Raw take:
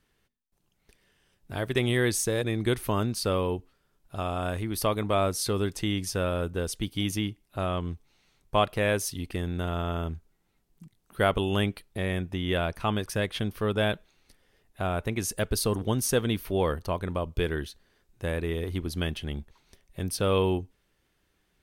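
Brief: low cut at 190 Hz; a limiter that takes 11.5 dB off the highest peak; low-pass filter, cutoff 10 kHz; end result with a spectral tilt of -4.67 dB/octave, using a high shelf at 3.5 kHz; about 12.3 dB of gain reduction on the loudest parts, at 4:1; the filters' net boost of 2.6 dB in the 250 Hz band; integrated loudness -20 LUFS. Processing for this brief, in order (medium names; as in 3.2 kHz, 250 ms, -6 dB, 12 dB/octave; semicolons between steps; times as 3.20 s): high-pass 190 Hz; low-pass 10 kHz; peaking EQ 250 Hz +5.5 dB; treble shelf 3.5 kHz -6 dB; compression 4:1, threshold -34 dBFS; trim +21.5 dB; peak limiter -7.5 dBFS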